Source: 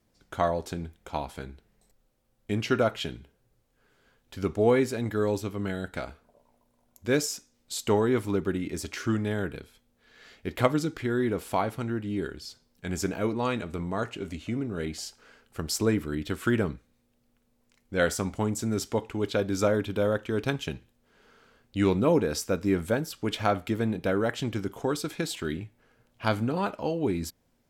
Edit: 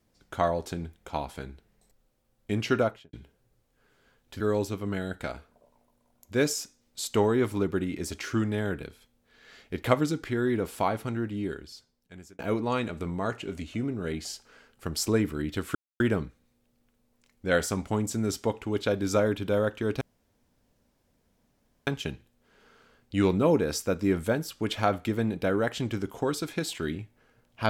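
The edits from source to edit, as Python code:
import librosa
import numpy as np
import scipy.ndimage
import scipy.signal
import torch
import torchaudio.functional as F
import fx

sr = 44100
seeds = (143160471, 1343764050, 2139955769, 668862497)

y = fx.studio_fade_out(x, sr, start_s=2.76, length_s=0.37)
y = fx.edit(y, sr, fx.cut(start_s=4.4, length_s=0.73),
    fx.fade_out_span(start_s=12.01, length_s=1.11),
    fx.insert_silence(at_s=16.48, length_s=0.25),
    fx.insert_room_tone(at_s=20.49, length_s=1.86), tone=tone)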